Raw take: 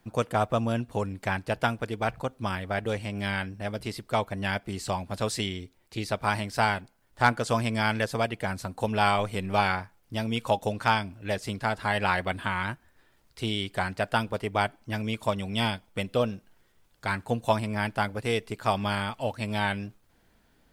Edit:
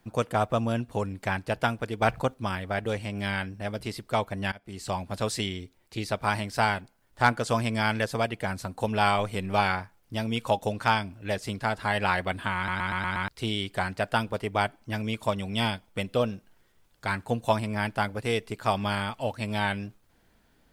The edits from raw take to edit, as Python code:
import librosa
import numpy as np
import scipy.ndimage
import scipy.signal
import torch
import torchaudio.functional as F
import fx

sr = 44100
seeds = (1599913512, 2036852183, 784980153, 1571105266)

y = fx.edit(x, sr, fx.clip_gain(start_s=2.02, length_s=0.32, db=4.5),
    fx.fade_in_from(start_s=4.52, length_s=0.45, floor_db=-23.5),
    fx.stutter_over(start_s=12.56, slice_s=0.12, count=6), tone=tone)